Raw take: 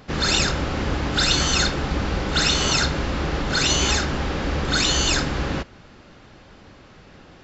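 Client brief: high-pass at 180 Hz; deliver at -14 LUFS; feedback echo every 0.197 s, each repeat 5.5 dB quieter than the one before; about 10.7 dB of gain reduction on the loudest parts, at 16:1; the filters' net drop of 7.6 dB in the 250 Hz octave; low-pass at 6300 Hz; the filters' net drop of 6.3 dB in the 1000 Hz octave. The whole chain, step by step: HPF 180 Hz; LPF 6300 Hz; bell 250 Hz -8 dB; bell 1000 Hz -8.5 dB; compressor 16:1, threshold -29 dBFS; feedback echo 0.197 s, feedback 53%, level -5.5 dB; gain +16.5 dB

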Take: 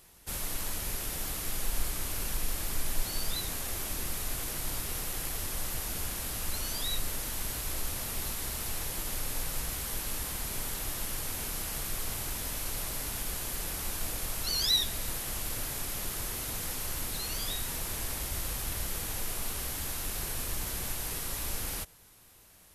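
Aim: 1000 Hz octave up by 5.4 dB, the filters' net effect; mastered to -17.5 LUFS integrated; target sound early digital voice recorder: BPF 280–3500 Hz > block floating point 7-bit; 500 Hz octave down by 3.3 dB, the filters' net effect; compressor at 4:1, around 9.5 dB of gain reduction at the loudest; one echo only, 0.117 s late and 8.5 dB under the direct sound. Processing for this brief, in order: bell 500 Hz -6.5 dB; bell 1000 Hz +8.5 dB; compressor 4:1, threshold -34 dBFS; BPF 280–3500 Hz; echo 0.117 s -8.5 dB; block floating point 7-bit; gain +26 dB

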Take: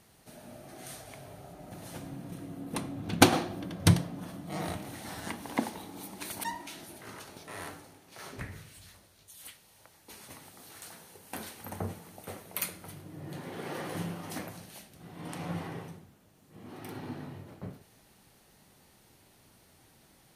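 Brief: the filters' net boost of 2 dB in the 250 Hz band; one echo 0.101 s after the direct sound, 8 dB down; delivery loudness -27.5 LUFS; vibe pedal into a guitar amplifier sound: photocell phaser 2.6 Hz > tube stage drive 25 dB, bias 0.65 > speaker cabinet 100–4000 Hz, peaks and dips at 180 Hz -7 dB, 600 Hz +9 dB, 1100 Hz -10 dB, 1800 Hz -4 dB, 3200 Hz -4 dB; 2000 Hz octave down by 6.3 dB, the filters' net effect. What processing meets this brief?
bell 250 Hz +4.5 dB; bell 2000 Hz -5 dB; echo 0.101 s -8 dB; photocell phaser 2.6 Hz; tube stage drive 25 dB, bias 0.65; speaker cabinet 100–4000 Hz, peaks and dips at 180 Hz -7 dB, 600 Hz +9 dB, 1100 Hz -10 dB, 1800 Hz -4 dB, 3200 Hz -4 dB; gain +16.5 dB

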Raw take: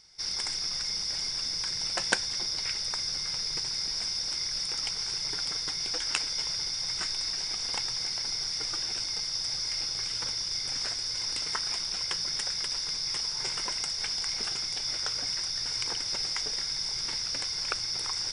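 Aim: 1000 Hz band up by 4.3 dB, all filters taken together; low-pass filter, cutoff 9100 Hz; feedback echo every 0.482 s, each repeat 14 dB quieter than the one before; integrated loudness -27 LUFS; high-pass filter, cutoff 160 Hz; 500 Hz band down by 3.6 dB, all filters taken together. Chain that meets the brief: HPF 160 Hz; LPF 9100 Hz; bell 500 Hz -6.5 dB; bell 1000 Hz +7 dB; feedback echo 0.482 s, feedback 20%, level -14 dB; gain +2 dB

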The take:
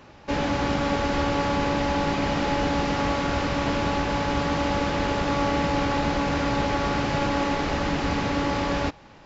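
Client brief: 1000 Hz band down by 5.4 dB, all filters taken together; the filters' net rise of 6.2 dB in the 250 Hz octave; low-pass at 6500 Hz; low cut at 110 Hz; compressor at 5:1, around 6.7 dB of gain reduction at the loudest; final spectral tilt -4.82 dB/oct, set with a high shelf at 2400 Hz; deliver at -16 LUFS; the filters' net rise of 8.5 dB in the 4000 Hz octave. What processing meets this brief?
HPF 110 Hz; LPF 6500 Hz; bell 250 Hz +8 dB; bell 1000 Hz -8.5 dB; high shelf 2400 Hz +4.5 dB; bell 4000 Hz +8 dB; compressor 5:1, threshold -25 dBFS; gain +12 dB

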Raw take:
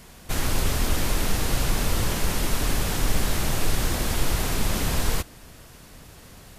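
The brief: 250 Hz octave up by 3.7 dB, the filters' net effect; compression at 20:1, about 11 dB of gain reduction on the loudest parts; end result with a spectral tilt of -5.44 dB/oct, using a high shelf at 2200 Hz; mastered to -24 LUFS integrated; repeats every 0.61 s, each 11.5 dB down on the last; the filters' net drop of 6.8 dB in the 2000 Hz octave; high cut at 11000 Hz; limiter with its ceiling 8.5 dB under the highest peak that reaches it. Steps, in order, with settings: LPF 11000 Hz; bell 250 Hz +5 dB; bell 2000 Hz -5 dB; high shelf 2200 Hz -7 dB; compressor 20:1, threshold -27 dBFS; limiter -28.5 dBFS; feedback echo 0.61 s, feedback 27%, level -11.5 dB; gain +16.5 dB

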